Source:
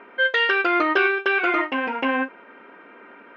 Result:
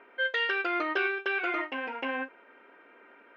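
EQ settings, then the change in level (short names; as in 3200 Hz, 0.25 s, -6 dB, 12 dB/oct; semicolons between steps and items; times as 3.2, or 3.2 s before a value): bell 170 Hz -11 dB 1.1 oct; bell 1100 Hz -3.5 dB 0.58 oct; -8.0 dB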